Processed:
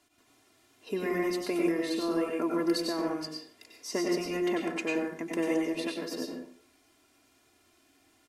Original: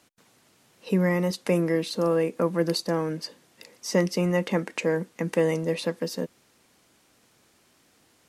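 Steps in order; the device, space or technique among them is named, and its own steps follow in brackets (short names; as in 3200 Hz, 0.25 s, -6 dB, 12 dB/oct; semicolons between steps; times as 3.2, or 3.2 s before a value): microphone above a desk (comb 2.9 ms, depth 83%; reverb RT60 0.55 s, pre-delay 89 ms, DRR -1 dB); gain -8.5 dB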